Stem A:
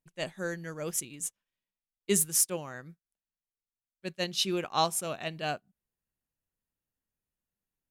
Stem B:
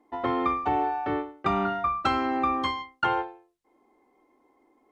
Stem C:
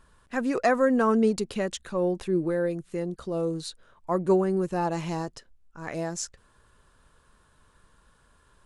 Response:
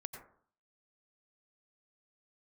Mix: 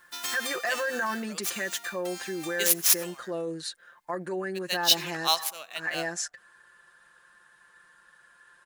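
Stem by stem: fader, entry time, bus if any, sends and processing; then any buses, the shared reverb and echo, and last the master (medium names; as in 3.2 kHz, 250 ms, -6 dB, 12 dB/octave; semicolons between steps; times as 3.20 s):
+1.5 dB, 0.50 s, no bus, send -7 dB, median filter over 5 samples; tilt EQ +3.5 dB/octave; upward expansion 1.5:1, over -41 dBFS
-4.0 dB, 0.00 s, bus A, send -18.5 dB, formants flattened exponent 0.1; endings held to a fixed fall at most 110 dB/s; auto duck -14 dB, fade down 1.60 s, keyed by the third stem
-1.0 dB, 0.00 s, bus A, no send, peaking EQ 1.7 kHz +14.5 dB 0.41 oct; comb 5.7 ms, depth 88%
bus A: 0.0 dB, peak limiter -19 dBFS, peak gain reduction 15 dB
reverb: on, RT60 0.55 s, pre-delay 82 ms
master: high-pass 720 Hz 6 dB/octave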